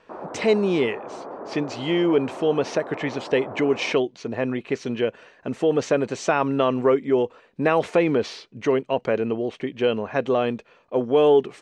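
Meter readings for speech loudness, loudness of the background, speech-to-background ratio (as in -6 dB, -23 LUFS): -23.0 LUFS, -36.5 LUFS, 13.5 dB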